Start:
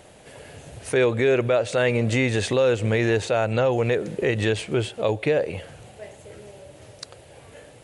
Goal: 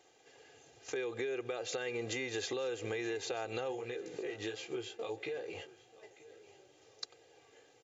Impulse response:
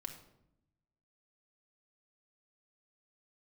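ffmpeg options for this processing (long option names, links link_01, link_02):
-filter_complex "[0:a]agate=range=-18dB:threshold=-34dB:ratio=16:detection=peak,highpass=210,highshelf=frequency=4900:gain=10,aecho=1:1:2.5:0.72,alimiter=limit=-16dB:level=0:latency=1:release=477,acompressor=threshold=-36dB:ratio=5,asplit=3[link_01][link_02][link_03];[link_01]afade=type=out:start_time=3.71:duration=0.02[link_04];[link_02]flanger=delay=15:depth=4.9:speed=1.5,afade=type=in:start_time=3.71:duration=0.02,afade=type=out:start_time=6.47:duration=0.02[link_05];[link_03]afade=type=in:start_time=6.47:duration=0.02[link_06];[link_04][link_05][link_06]amix=inputs=3:normalize=0,aecho=1:1:935|1870|2805:0.1|0.038|0.0144" -ar 24000 -c:a mp2 -b:a 96k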